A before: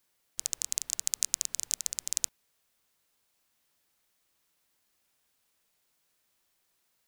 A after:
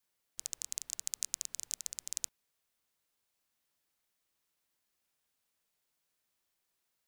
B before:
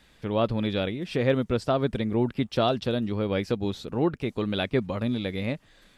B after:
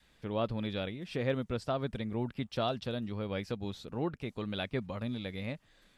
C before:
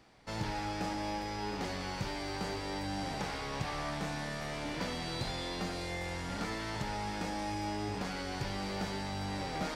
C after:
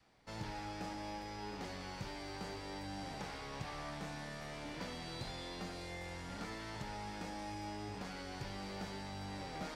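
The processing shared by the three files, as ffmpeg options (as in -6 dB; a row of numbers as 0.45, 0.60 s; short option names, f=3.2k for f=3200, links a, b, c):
-af "adynamicequalizer=threshold=0.0112:dfrequency=350:dqfactor=1.4:tfrequency=350:tqfactor=1.4:attack=5:release=100:ratio=0.375:range=2.5:mode=cutabove:tftype=bell,volume=-7.5dB"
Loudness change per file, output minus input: -7.5, -9.0, -7.5 LU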